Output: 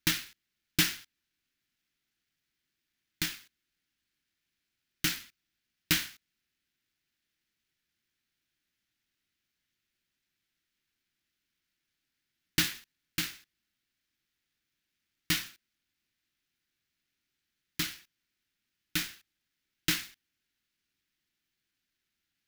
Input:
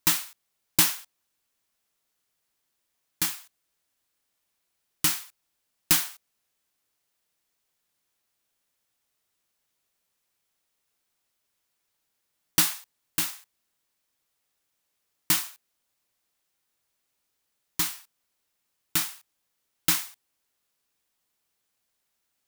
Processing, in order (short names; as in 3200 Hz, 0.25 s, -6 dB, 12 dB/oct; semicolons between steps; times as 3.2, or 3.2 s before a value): median filter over 5 samples; band shelf 720 Hz -14 dB